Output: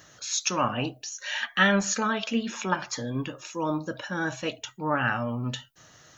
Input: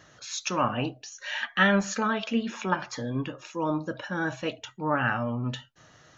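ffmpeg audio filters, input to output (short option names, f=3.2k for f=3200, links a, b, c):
-af "aemphasis=mode=production:type=50fm"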